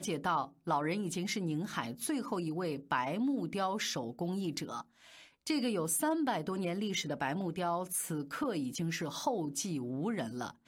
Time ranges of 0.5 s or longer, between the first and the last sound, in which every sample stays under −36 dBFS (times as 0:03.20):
0:04.81–0:05.47